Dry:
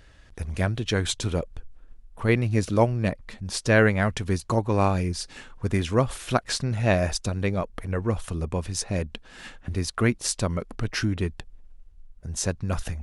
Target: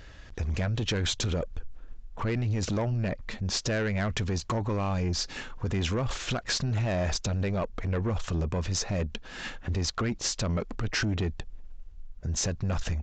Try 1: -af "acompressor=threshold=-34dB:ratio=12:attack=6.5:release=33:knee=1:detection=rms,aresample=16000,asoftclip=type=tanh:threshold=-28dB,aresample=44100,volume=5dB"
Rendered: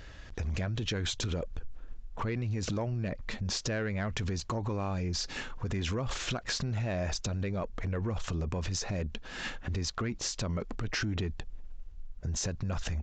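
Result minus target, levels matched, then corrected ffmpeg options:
downward compressor: peak gain reduction +7 dB
-af "acompressor=threshold=-26.5dB:ratio=12:attack=6.5:release=33:knee=1:detection=rms,aresample=16000,asoftclip=type=tanh:threshold=-28dB,aresample=44100,volume=5dB"

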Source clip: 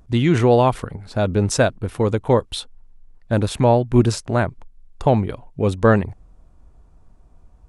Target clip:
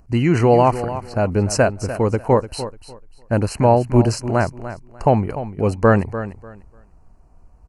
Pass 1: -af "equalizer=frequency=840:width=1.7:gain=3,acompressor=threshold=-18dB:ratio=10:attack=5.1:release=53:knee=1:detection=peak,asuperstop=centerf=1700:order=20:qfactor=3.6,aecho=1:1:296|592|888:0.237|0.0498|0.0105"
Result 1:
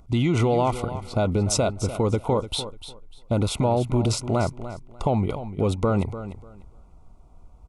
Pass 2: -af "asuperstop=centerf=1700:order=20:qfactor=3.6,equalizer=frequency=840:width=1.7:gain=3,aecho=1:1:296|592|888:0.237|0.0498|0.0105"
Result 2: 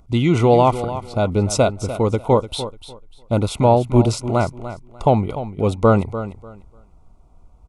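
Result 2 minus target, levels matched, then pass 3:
2,000 Hz band −5.0 dB
-af "asuperstop=centerf=3500:order=20:qfactor=3.6,equalizer=frequency=840:width=1.7:gain=3,aecho=1:1:296|592|888:0.237|0.0498|0.0105"

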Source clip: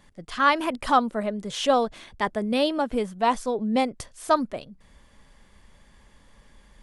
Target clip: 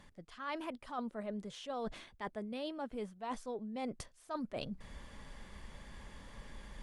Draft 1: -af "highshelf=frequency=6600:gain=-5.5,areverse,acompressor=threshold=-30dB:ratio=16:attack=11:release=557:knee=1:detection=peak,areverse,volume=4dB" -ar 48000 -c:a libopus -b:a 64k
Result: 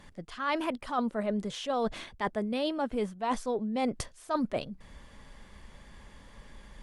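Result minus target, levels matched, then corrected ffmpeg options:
downward compressor: peak gain reduction −10.5 dB
-af "highshelf=frequency=6600:gain=-5.5,areverse,acompressor=threshold=-41dB:ratio=16:attack=11:release=557:knee=1:detection=peak,areverse,volume=4dB" -ar 48000 -c:a libopus -b:a 64k

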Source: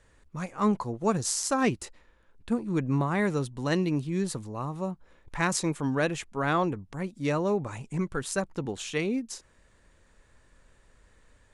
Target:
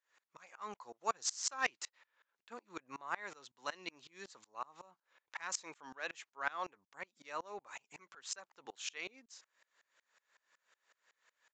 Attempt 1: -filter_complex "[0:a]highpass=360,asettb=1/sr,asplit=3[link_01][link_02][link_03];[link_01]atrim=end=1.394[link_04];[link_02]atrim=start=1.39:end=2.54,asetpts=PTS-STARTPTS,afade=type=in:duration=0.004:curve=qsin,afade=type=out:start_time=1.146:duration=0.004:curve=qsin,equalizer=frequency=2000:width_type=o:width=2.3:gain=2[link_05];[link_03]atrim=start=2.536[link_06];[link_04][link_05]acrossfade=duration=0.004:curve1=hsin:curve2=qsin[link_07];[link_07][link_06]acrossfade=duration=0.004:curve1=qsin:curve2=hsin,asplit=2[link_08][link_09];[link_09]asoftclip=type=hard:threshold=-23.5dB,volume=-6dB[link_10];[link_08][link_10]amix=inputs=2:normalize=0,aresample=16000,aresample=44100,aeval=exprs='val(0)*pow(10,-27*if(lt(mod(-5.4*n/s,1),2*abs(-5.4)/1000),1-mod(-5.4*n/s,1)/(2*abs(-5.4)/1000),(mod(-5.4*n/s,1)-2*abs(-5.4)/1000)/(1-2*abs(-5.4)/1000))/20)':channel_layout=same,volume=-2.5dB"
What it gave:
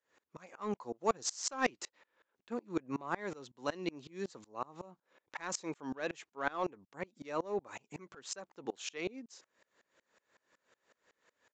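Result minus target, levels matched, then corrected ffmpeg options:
500 Hz band +7.5 dB
-filter_complex "[0:a]highpass=990,asettb=1/sr,asplit=3[link_01][link_02][link_03];[link_01]atrim=end=1.394[link_04];[link_02]atrim=start=1.39:end=2.54,asetpts=PTS-STARTPTS,afade=type=in:duration=0.004:curve=qsin,afade=type=out:start_time=1.146:duration=0.004:curve=qsin,equalizer=frequency=2000:width_type=o:width=2.3:gain=2[link_05];[link_03]atrim=start=2.536[link_06];[link_04][link_05]acrossfade=duration=0.004:curve1=hsin:curve2=qsin[link_07];[link_07][link_06]acrossfade=duration=0.004:curve1=qsin:curve2=hsin,asplit=2[link_08][link_09];[link_09]asoftclip=type=hard:threshold=-23.5dB,volume=-6dB[link_10];[link_08][link_10]amix=inputs=2:normalize=0,aresample=16000,aresample=44100,aeval=exprs='val(0)*pow(10,-27*if(lt(mod(-5.4*n/s,1),2*abs(-5.4)/1000),1-mod(-5.4*n/s,1)/(2*abs(-5.4)/1000),(mod(-5.4*n/s,1)-2*abs(-5.4)/1000)/(1-2*abs(-5.4)/1000))/20)':channel_layout=same,volume=-2.5dB"

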